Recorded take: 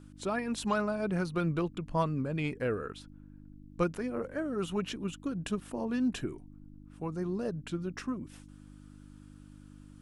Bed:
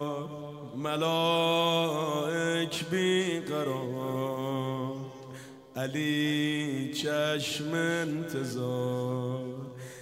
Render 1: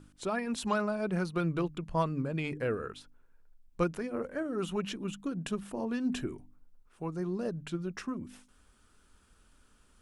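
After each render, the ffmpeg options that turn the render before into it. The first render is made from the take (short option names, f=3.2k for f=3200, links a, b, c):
-af "bandreject=f=50:t=h:w=4,bandreject=f=100:t=h:w=4,bandreject=f=150:t=h:w=4,bandreject=f=200:t=h:w=4,bandreject=f=250:t=h:w=4,bandreject=f=300:t=h:w=4"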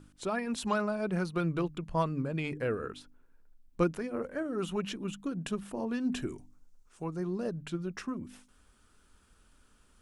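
-filter_complex "[0:a]asettb=1/sr,asplit=3[a][b][c];[a]atrim=end=2.824[d];[b]atrim=start=2.82:end=3.92,asetpts=PTS-STARTPTS,afade=t=in:d=0.004:c=qsin,afade=t=out:st=1.096:d=0.004:c=qsin,equalizer=f=270:t=o:w=0.77:g=6.5[e];[c]atrim=start=3.916[f];[d][e]acrossfade=d=0.004:c1=hsin:c2=qsin[g];[g][f]acrossfade=d=0.004:c1=qsin:c2=hsin,asettb=1/sr,asplit=3[h][i][j];[h]atrim=end=6.224[k];[i]atrim=start=6.22:end=7.04,asetpts=PTS-STARTPTS,afade=t=in:d=0.004:c=qsin,afade=t=out:st=0.816:d=0.004:c=qsin,equalizer=f=6.7k:w=1.1:g=12[l];[j]atrim=start=7.036[m];[k][l]acrossfade=d=0.004:c1=hsin:c2=qsin[n];[n][m]acrossfade=d=0.004:c1=qsin:c2=hsin"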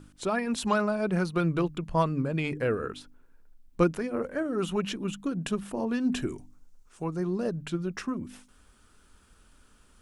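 -af "volume=4.5dB"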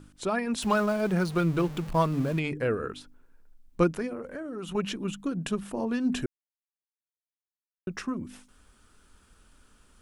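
-filter_complex "[0:a]asettb=1/sr,asplit=3[a][b][c];[a]atrim=end=0.624[d];[b]atrim=start=0.62:end=2.39,asetpts=PTS-STARTPTS,afade=t=in:d=0.004:c=qsin,afade=t=out:st=1.766:d=0.004:c=qsin,aeval=exprs='val(0)+0.5*0.015*sgn(val(0))':c=same[e];[c]atrim=start=2.386[f];[d][e]acrossfade=d=0.004:c1=hsin:c2=qsin[g];[g][f]acrossfade=d=0.004:c1=qsin:c2=hsin,asettb=1/sr,asplit=3[h][i][j];[h]atrim=end=4.134[k];[i]atrim=start=4.13:end=4.75,asetpts=PTS-STARTPTS,afade=t=in:d=0.004:c=qsin,afade=t=out:st=0.616:d=0.004:c=qsin,acompressor=threshold=-34dB:ratio=4:attack=3.2:release=140:knee=1:detection=peak[l];[j]atrim=start=4.746[m];[k][l]acrossfade=d=0.004:c1=hsin:c2=qsin[n];[n][m]acrossfade=d=0.004:c1=qsin:c2=hsin,asplit=3[o][p][q];[o]atrim=end=6.26,asetpts=PTS-STARTPTS,afade=t=out:st=6.256:d=0.004:c=hsin[r];[p]atrim=start=6.26:end=7.87,asetpts=PTS-STARTPTS,volume=0[s];[q]atrim=start=7.87,asetpts=PTS-STARTPTS,afade=t=in:d=0.004:c=hsin[t];[r][s][t]concat=n=3:v=0:a=1"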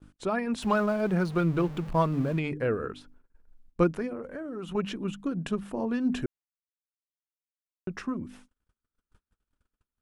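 -af "agate=range=-34dB:threshold=-53dB:ratio=16:detection=peak,highshelf=f=3.8k:g=-9.5"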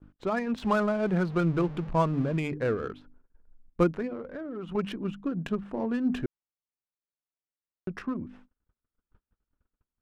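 -af "adynamicsmooth=sensitivity=8:basefreq=2k"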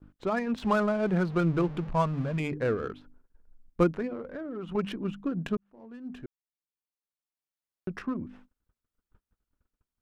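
-filter_complex "[0:a]asettb=1/sr,asplit=3[a][b][c];[a]atrim=end=1.924[d];[b]atrim=start=1.92:end=2.4,asetpts=PTS-STARTPTS,afade=t=in:d=0.004:c=qsin,afade=t=out:st=0.476:d=0.004:c=qsin,equalizer=f=340:t=o:w=0.77:g=-10.5[e];[c]atrim=start=2.396[f];[d][e]acrossfade=d=0.004:c1=hsin:c2=qsin[g];[g][f]acrossfade=d=0.004:c1=qsin:c2=hsin,asplit=2[h][i];[h]atrim=end=5.57,asetpts=PTS-STARTPTS,afade=t=out:st=5.566:d=0.004:c=hsin[j];[i]atrim=start=5.57,asetpts=PTS-STARTPTS,afade=t=in:d=2.31[k];[j][k]concat=n=2:v=0:a=1"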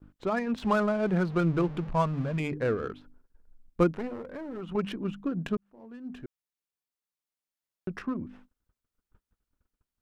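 -filter_complex "[0:a]asettb=1/sr,asplit=3[a][b][c];[a]atrim=end=3.964[d];[b]atrim=start=3.96:end=4.61,asetpts=PTS-STARTPTS,afade=t=in:d=0.004:c=qsin,afade=t=out:st=0.646:d=0.004:c=qsin,aeval=exprs='clip(val(0),-1,0.0126)':c=same[e];[c]atrim=start=4.606[f];[d][e]acrossfade=d=0.004:c1=hsin:c2=qsin[g];[g][f]acrossfade=d=0.004:c1=qsin:c2=hsin"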